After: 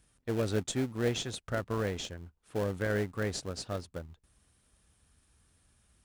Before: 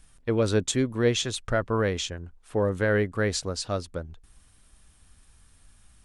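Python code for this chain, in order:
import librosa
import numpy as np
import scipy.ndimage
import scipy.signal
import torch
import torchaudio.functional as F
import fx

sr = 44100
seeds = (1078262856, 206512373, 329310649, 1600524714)

p1 = scipy.signal.sosfilt(scipy.signal.butter(2, 60.0, 'highpass', fs=sr, output='sos'), x)
p2 = fx.sample_hold(p1, sr, seeds[0], rate_hz=1100.0, jitter_pct=20)
p3 = p1 + (p2 * 10.0 ** (-9.5 / 20.0))
y = p3 * 10.0 ** (-8.5 / 20.0)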